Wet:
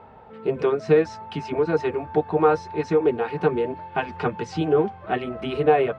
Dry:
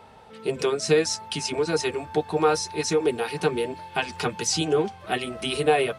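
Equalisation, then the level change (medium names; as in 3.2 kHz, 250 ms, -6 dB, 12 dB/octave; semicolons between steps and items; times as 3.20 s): low-pass 1.6 kHz 12 dB/octave; +3.0 dB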